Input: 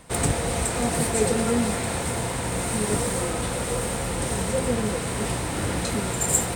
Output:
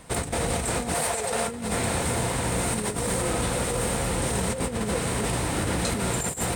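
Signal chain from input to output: 0.94–1.48 s: resonant low shelf 440 Hz -10 dB, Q 1.5; compressor with a negative ratio -26 dBFS, ratio -0.5

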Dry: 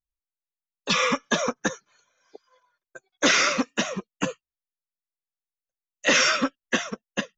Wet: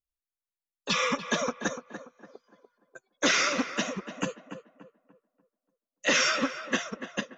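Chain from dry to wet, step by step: tape echo 291 ms, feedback 39%, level -8.5 dB, low-pass 1.7 kHz; trim -4.5 dB

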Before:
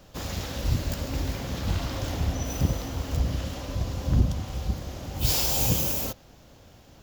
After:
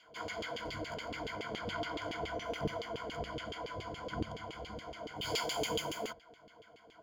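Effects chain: rippled EQ curve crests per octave 1.8, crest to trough 17 dB; LFO band-pass saw down 7.1 Hz 380–3100 Hz; trim +1.5 dB

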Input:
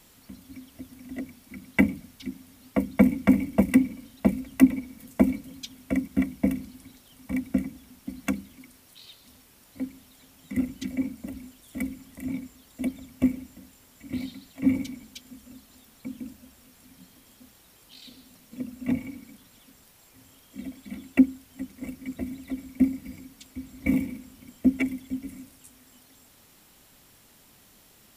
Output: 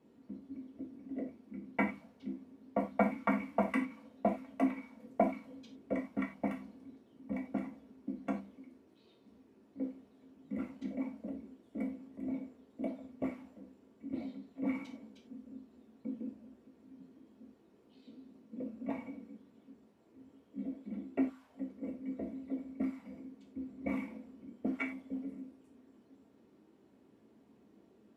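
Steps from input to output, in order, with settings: auto-wah 330–1200 Hz, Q 2.2, up, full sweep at -20.5 dBFS; gated-style reverb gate 120 ms falling, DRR 0 dB; trim +1 dB

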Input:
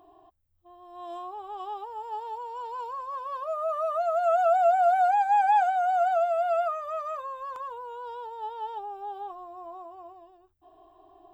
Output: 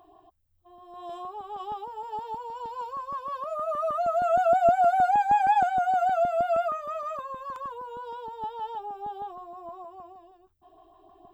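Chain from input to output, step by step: LFO notch saw up 6.4 Hz 230–2800 Hz; trim +2 dB

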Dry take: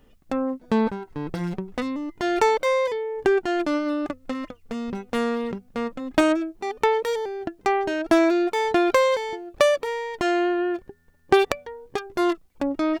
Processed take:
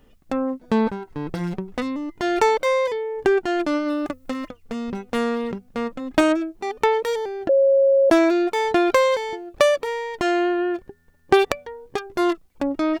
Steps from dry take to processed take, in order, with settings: 3.90–4.48 s: treble shelf 9 kHz +9.5 dB; 7.49–8.10 s: bleep 546 Hz -14 dBFS; trim +1.5 dB

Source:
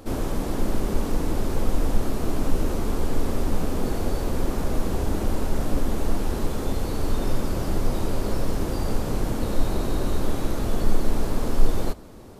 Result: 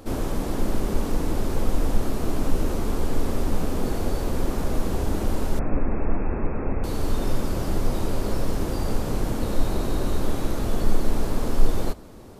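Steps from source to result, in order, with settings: 5.59–6.84 s: brick-wall FIR low-pass 2.7 kHz

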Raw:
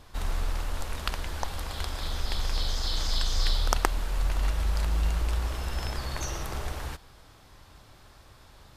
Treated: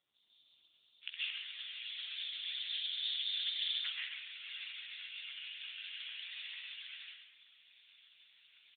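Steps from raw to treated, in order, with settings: inverse Chebyshev high-pass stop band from 1.7 kHz, stop band 60 dB, from 1.01 s stop band from 760 Hz; doubling 16 ms -8.5 dB; frequency-shifting echo 132 ms, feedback 34%, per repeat +71 Hz, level -6.5 dB; reverberation RT60 0.65 s, pre-delay 105 ms, DRR -7 dB; trim -1 dB; AMR-NB 5.15 kbps 8 kHz

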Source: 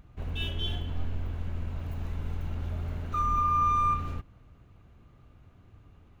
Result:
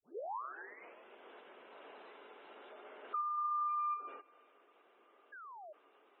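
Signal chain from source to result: tape start-up on the opening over 1.19 s; compression 5:1, threshold -35 dBFS, peak gain reduction 12 dB; elliptic band-pass 400–3600 Hz, stop band 50 dB; painted sound fall, 5.32–5.73 s, 580–1700 Hz -52 dBFS; feedback echo behind a high-pass 331 ms, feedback 35%, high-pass 2.6 kHz, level -16.5 dB; spectral gate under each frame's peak -25 dB strong; trim +1 dB

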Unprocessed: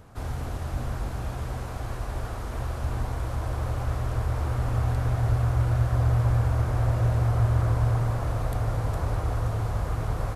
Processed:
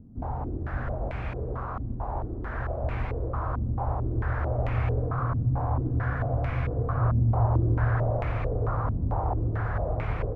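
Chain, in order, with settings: spectral freeze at 5.04 s, 1.96 s; step-sequenced low-pass 4.5 Hz 240–2300 Hz; trim -1.5 dB

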